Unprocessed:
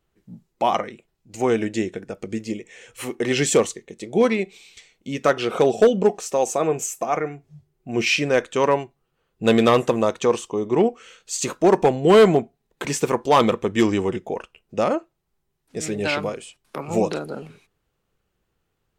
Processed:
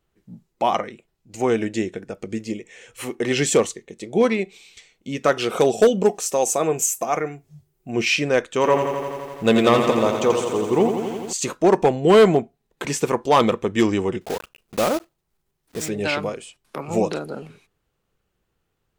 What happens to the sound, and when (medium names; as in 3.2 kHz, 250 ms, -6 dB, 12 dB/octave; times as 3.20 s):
5.32–7.91 s: treble shelf 6.3 kHz +12 dB
8.46–11.33 s: bit-crushed delay 85 ms, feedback 80%, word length 8-bit, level -7 dB
14.21–15.89 s: block-companded coder 3-bit